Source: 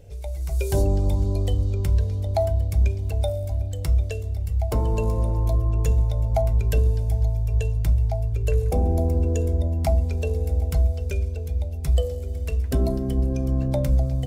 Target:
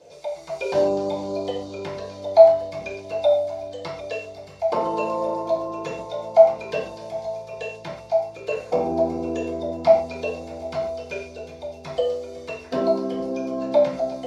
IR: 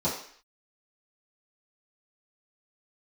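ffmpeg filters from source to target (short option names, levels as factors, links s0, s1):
-filter_complex "[0:a]acrossover=split=4200[s0][s1];[s1]acompressor=threshold=0.00141:ratio=4:attack=1:release=60[s2];[s0][s2]amix=inputs=2:normalize=0,highpass=720,lowpass=7900[s3];[1:a]atrim=start_sample=2205,atrim=end_sample=6615[s4];[s3][s4]afir=irnorm=-1:irlink=0,volume=1.12"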